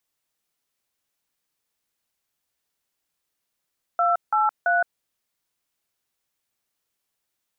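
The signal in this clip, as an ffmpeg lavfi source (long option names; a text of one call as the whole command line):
ffmpeg -f lavfi -i "aevalsrc='0.1*clip(min(mod(t,0.335),0.167-mod(t,0.335))/0.002,0,1)*(eq(floor(t/0.335),0)*(sin(2*PI*697*mod(t,0.335))+sin(2*PI*1336*mod(t,0.335)))+eq(floor(t/0.335),1)*(sin(2*PI*852*mod(t,0.335))+sin(2*PI*1336*mod(t,0.335)))+eq(floor(t/0.335),2)*(sin(2*PI*697*mod(t,0.335))+sin(2*PI*1477*mod(t,0.335))))':duration=1.005:sample_rate=44100" out.wav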